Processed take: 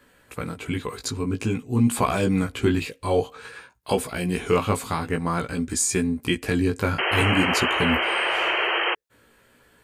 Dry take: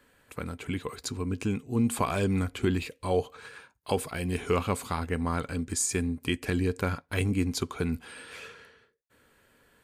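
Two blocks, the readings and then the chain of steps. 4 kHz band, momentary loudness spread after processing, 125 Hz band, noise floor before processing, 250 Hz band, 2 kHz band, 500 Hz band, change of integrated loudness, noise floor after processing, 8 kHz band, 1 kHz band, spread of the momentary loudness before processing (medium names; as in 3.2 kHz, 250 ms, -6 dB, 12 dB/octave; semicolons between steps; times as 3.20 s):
+13.0 dB, 11 LU, +4.5 dB, -68 dBFS, +5.5 dB, +12.5 dB, +6.0 dB, +7.0 dB, -59 dBFS, +5.5 dB, +9.0 dB, 15 LU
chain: chorus 0.51 Hz, delay 16 ms, depth 2.7 ms; painted sound noise, 6.98–8.95 s, 320–3200 Hz -32 dBFS; trim +8.5 dB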